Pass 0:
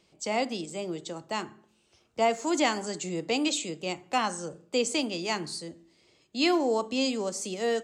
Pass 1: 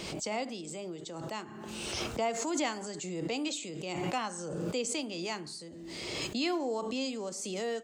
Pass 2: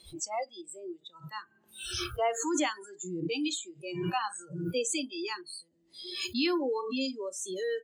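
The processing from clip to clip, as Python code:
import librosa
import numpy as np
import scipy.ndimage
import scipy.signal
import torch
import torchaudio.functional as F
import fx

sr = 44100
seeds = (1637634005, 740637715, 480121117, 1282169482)

y1 = fx.pre_swell(x, sr, db_per_s=25.0)
y1 = y1 * 10.0 ** (-7.5 / 20.0)
y2 = fx.noise_reduce_blind(y1, sr, reduce_db=29)
y2 = y2 * 10.0 ** (3.5 / 20.0)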